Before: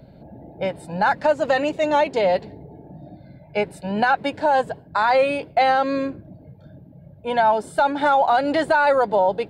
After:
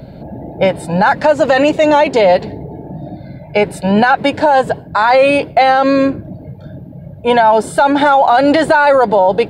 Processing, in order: maximiser +15 dB; gain -1.5 dB

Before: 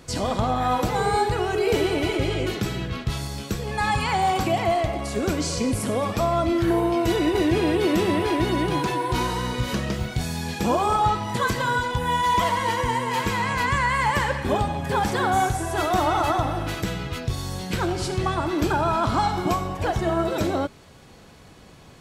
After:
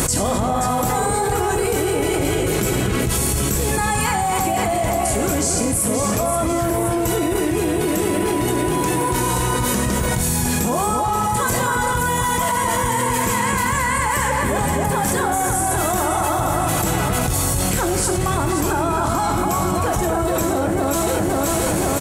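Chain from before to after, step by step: resonant high shelf 6200 Hz +12.5 dB, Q 1.5; doubler 25 ms -10.5 dB; echo with dull and thin repeats by turns 0.263 s, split 2200 Hz, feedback 63%, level -3.5 dB; fast leveller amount 100%; gain -3 dB

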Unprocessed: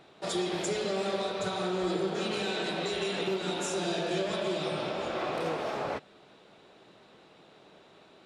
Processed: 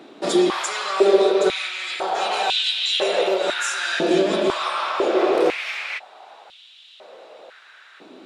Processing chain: stepped high-pass 2 Hz 270–3200 Hz; gain +8.5 dB

